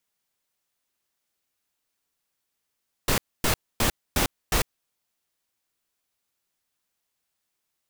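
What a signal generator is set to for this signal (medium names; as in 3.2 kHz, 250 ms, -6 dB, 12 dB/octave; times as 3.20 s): noise bursts pink, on 0.10 s, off 0.26 s, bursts 5, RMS -22 dBFS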